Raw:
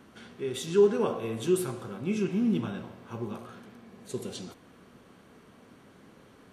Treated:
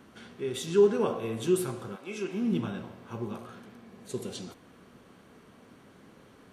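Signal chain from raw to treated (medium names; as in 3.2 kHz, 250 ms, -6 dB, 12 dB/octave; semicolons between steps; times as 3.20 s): 1.95–2.51 s: high-pass 710 Hz -> 200 Hz 12 dB/octave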